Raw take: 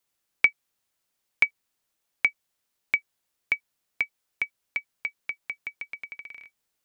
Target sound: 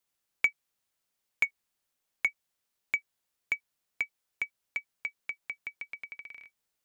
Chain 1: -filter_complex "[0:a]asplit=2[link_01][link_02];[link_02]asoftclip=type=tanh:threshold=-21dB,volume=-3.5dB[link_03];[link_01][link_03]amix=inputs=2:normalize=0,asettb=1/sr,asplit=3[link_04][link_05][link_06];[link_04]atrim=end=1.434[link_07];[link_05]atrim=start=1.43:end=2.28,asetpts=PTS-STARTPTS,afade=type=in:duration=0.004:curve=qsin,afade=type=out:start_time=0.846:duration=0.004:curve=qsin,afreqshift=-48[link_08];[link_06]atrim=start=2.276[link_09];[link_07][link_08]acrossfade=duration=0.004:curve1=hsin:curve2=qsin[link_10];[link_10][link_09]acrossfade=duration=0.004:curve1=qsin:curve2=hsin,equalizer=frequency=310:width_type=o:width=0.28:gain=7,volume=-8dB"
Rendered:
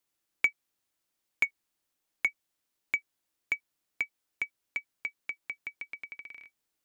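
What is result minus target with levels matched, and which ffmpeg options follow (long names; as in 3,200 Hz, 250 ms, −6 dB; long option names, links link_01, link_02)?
250 Hz band +4.0 dB
-filter_complex "[0:a]asplit=2[link_01][link_02];[link_02]asoftclip=type=tanh:threshold=-21dB,volume=-3.5dB[link_03];[link_01][link_03]amix=inputs=2:normalize=0,asettb=1/sr,asplit=3[link_04][link_05][link_06];[link_04]atrim=end=1.434[link_07];[link_05]atrim=start=1.43:end=2.28,asetpts=PTS-STARTPTS,afade=type=in:duration=0.004:curve=qsin,afade=type=out:start_time=0.846:duration=0.004:curve=qsin,afreqshift=-48[link_08];[link_06]atrim=start=2.276[link_09];[link_07][link_08]acrossfade=duration=0.004:curve1=hsin:curve2=qsin[link_10];[link_10][link_09]acrossfade=duration=0.004:curve1=qsin:curve2=hsin,equalizer=frequency=310:width_type=o:width=0.28:gain=-2,volume=-8dB"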